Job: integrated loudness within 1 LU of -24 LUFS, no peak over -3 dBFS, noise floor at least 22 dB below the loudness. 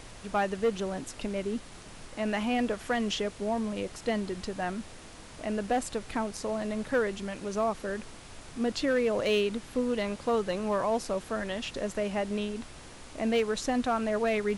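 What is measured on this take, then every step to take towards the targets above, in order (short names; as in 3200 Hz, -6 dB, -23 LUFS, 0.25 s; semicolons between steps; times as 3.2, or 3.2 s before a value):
clipped 0.4%; flat tops at -20.5 dBFS; noise floor -48 dBFS; noise floor target -53 dBFS; loudness -31.0 LUFS; peak -20.5 dBFS; loudness target -24.0 LUFS
-> clip repair -20.5 dBFS; noise print and reduce 6 dB; gain +7 dB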